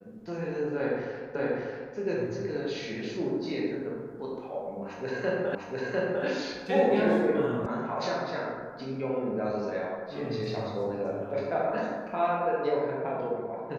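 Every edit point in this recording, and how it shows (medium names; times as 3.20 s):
1.35 s: repeat of the last 0.59 s
5.55 s: repeat of the last 0.7 s
7.66 s: sound stops dead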